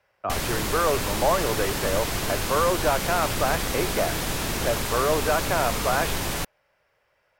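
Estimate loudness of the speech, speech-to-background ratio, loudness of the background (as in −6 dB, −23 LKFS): −26.5 LKFS, 0.5 dB, −27.0 LKFS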